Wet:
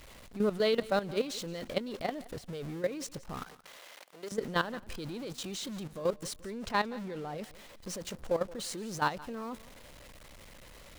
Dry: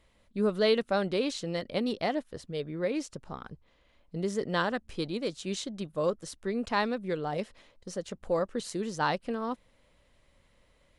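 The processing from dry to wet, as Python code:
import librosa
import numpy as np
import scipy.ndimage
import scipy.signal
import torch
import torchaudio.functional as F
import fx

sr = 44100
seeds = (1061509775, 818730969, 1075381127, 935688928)

y = x + 0.5 * 10.0 ** (-37.0 / 20.0) * np.sign(x)
y = fx.highpass(y, sr, hz=570.0, slope=12, at=(3.44, 4.32))
y = fx.high_shelf(y, sr, hz=8300.0, db=-6.0, at=(6.52, 7.38))
y = fx.level_steps(y, sr, step_db=13)
y = fx.echo_feedback(y, sr, ms=173, feedback_pct=31, wet_db=-20)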